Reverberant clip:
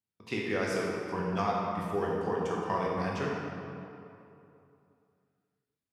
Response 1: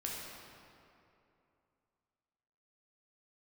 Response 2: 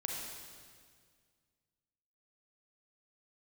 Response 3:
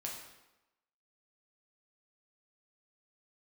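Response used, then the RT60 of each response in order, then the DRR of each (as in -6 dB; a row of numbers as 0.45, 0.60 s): 1; 2.8, 1.9, 0.95 s; -4.0, -1.0, -2.0 dB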